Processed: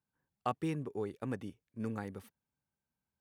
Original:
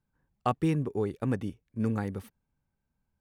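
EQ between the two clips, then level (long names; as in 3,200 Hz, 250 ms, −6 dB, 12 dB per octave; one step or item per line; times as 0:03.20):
high-pass filter 73 Hz
low-shelf EQ 270 Hz −6 dB
−5.5 dB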